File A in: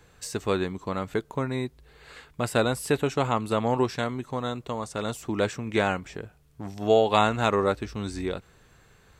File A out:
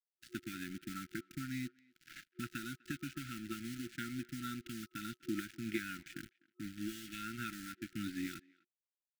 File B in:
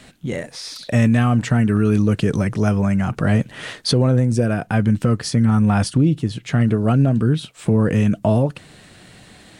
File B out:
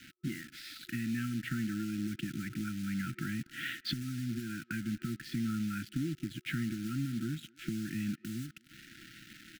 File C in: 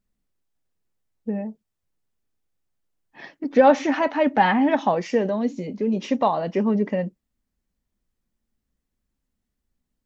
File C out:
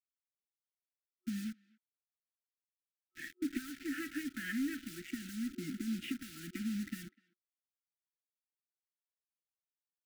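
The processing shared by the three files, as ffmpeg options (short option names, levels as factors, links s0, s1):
-filter_complex "[0:a]highpass=f=140:w=0.5412,highpass=f=140:w=1.3066,equalizer=f=180:t=q:w=4:g=-6,equalizer=f=540:t=q:w=4:g=9,equalizer=f=880:t=q:w=4:g=-3,lowpass=f=3300:w=0.5412,lowpass=f=3300:w=1.3066,acompressor=threshold=0.0447:ratio=8,acrusher=bits=4:mode=log:mix=0:aa=0.000001,asoftclip=type=tanh:threshold=0.141,acrusher=bits=6:mix=0:aa=0.5,afftfilt=real='re*(1-between(b*sr/4096,360,1300))':imag='im*(1-between(b*sr/4096,360,1300))':win_size=4096:overlap=0.75,asplit=2[s0][s1];[s1]adelay=250,highpass=300,lowpass=3400,asoftclip=type=hard:threshold=0.0335,volume=0.0631[s2];[s0][s2]amix=inputs=2:normalize=0,volume=0.631"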